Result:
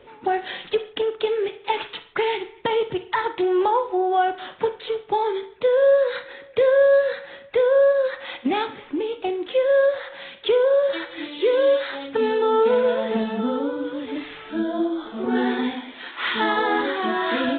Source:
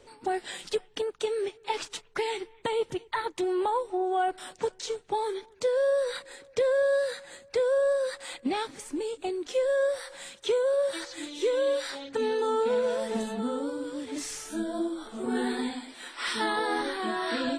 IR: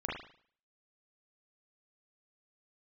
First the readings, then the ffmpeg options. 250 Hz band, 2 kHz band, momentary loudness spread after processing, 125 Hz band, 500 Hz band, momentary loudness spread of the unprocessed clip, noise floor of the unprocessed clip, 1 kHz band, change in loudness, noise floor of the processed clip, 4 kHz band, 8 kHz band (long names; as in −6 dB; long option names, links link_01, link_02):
+7.0 dB, +7.5 dB, 11 LU, can't be measured, +7.5 dB, 10 LU, −57 dBFS, +7.5 dB, +7.5 dB, −46 dBFS, +5.0 dB, below −40 dB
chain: -filter_complex "[0:a]highpass=frequency=59:poles=1,asplit=2[link_01][link_02];[1:a]atrim=start_sample=2205,afade=type=out:start_time=0.23:duration=0.01,atrim=end_sample=10584,lowshelf=frequency=410:gain=-7[link_03];[link_02][link_03]afir=irnorm=-1:irlink=0,volume=-10dB[link_04];[link_01][link_04]amix=inputs=2:normalize=0,volume=5.5dB" -ar 8000 -c:a adpcm_g726 -b:a 40k